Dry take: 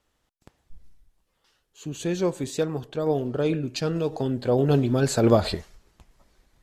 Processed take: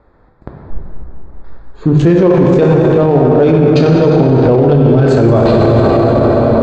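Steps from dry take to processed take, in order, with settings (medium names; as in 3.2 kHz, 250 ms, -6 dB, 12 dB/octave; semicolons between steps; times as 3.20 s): local Wiener filter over 15 samples; treble shelf 5.1 kHz -9 dB; in parallel at -7.5 dB: crossover distortion -33 dBFS; on the sum: distance through air 140 m; plate-style reverb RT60 4 s, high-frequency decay 0.65×, DRR -2 dB; loudness maximiser +25 dB; trim -1 dB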